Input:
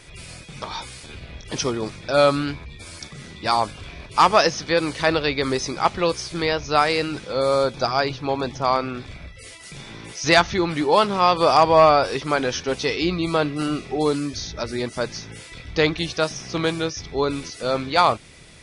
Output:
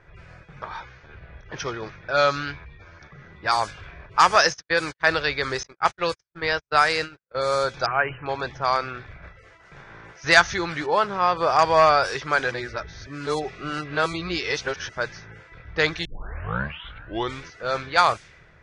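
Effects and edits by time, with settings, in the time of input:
0.77–3.32 elliptic low-pass 6400 Hz
4.35–5.11 gate -28 dBFS, range -59 dB
5.63–7.35 gate -26 dBFS, range -56 dB
7.86–8.26 brick-wall FIR low-pass 3100 Hz
9.22–10.16 spectral contrast lowered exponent 0.67
10.86–11.59 LPF 1500 Hz 6 dB/oct
12.51–14.89 reverse
16.05 tape start 1.38 s
whole clip: low-pass opened by the level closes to 1100 Hz, open at -14 dBFS; fifteen-band EQ 250 Hz -10 dB, 1600 Hz +10 dB, 6300 Hz +9 dB; gain -4 dB

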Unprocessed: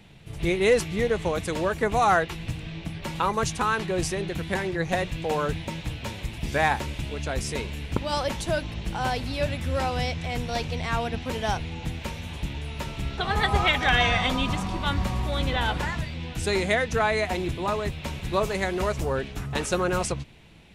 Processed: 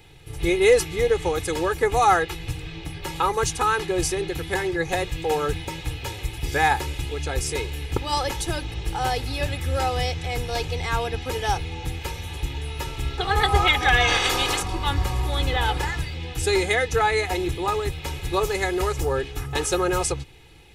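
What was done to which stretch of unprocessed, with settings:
14.07–14.61 spectral limiter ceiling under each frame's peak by 20 dB
whole clip: high shelf 8500 Hz +8.5 dB; comb 2.4 ms, depth 80%

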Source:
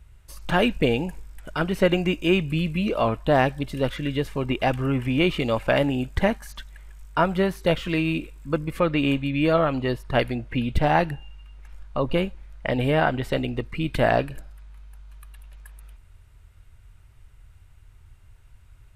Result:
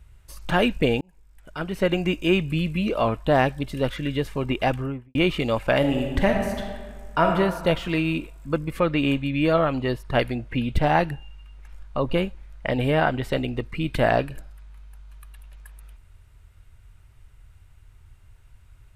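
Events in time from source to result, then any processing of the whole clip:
1.01–2.13 fade in
4.66–5.15 studio fade out
5.78–7.27 reverb throw, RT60 1.6 s, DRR 2 dB

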